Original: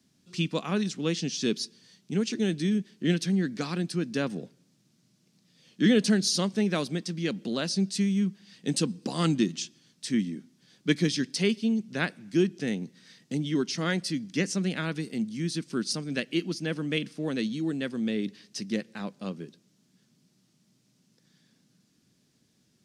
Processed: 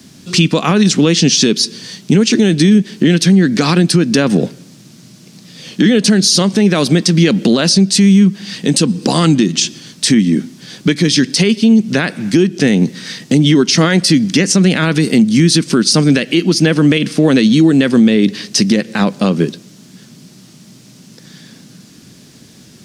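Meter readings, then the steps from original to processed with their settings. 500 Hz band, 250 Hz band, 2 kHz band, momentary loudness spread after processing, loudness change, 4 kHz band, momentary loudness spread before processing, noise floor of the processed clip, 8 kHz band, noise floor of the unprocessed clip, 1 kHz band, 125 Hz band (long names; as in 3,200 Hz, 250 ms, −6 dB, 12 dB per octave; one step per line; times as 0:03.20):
+16.0 dB, +17.5 dB, +15.5 dB, 7 LU, +17.5 dB, +18.5 dB, 10 LU, −42 dBFS, +19.0 dB, −69 dBFS, +17.0 dB, +18.0 dB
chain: downward compressor 12 to 1, threshold −31 dBFS, peak gain reduction 14.5 dB
boost into a limiter +28 dB
level −1 dB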